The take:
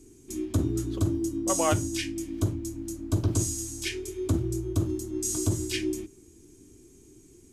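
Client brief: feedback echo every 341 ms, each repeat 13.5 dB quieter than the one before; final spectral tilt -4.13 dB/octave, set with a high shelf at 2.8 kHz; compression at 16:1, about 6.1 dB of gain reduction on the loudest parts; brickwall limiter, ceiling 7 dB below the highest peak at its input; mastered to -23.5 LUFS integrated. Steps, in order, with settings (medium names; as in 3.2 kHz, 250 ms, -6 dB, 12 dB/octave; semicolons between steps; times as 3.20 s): treble shelf 2.8 kHz +5.5 dB; compression 16:1, threshold -25 dBFS; peak limiter -21.5 dBFS; feedback delay 341 ms, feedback 21%, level -13.5 dB; trim +8.5 dB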